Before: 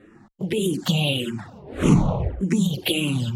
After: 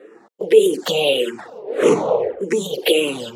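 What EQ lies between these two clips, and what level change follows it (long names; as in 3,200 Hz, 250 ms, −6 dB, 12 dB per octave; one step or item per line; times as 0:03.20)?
high-pass with resonance 460 Hz, resonance Q 5.7
dynamic equaliser 1,800 Hz, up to +5 dB, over −44 dBFS, Q 3
+3.0 dB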